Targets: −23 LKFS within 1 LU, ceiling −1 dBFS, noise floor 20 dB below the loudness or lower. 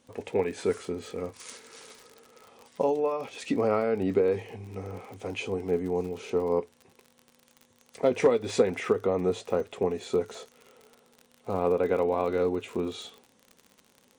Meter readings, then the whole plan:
crackle rate 51 per second; integrated loudness −28.5 LKFS; sample peak −10.5 dBFS; target loudness −23.0 LKFS
→ click removal
level +5.5 dB

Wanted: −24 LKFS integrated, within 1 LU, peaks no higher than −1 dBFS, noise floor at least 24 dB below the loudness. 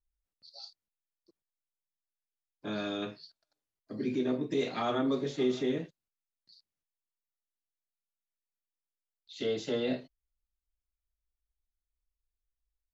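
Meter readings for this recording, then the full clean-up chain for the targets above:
integrated loudness −33.0 LKFS; sample peak −18.5 dBFS; target loudness −24.0 LKFS
→ level +9 dB

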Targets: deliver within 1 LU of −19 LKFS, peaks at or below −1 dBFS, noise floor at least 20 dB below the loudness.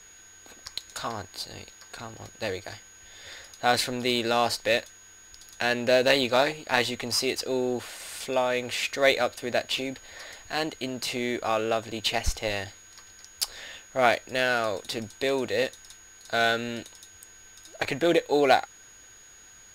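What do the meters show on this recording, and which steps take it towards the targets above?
interfering tone 6,700 Hz; level of the tone −50 dBFS; integrated loudness −26.5 LKFS; sample peak −3.5 dBFS; target loudness −19.0 LKFS
→ notch filter 6,700 Hz, Q 30
level +7.5 dB
brickwall limiter −1 dBFS

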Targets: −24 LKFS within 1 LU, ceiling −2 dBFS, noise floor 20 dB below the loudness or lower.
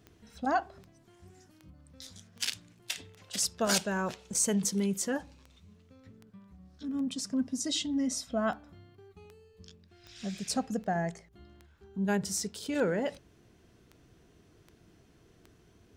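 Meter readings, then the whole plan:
number of clicks 21; integrated loudness −32.0 LKFS; sample peak −14.0 dBFS; target loudness −24.0 LKFS
→ click removal
level +8 dB

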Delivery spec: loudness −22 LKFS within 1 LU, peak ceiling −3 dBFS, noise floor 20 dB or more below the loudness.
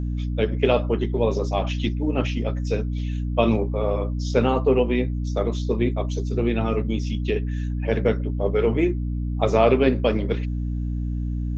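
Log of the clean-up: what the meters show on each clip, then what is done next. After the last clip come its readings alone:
mains hum 60 Hz; hum harmonics up to 300 Hz; level of the hum −23 dBFS; integrated loudness −23.5 LKFS; sample peak −5.0 dBFS; target loudness −22.0 LKFS
→ hum removal 60 Hz, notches 5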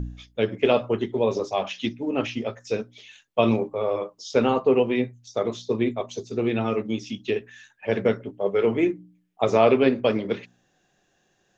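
mains hum none found; integrated loudness −24.5 LKFS; sample peak −6.5 dBFS; target loudness −22.0 LKFS
→ level +2.5 dB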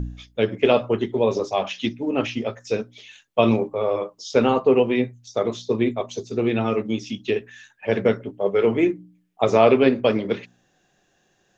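integrated loudness −22.0 LKFS; sample peak −4.0 dBFS; background noise floor −66 dBFS

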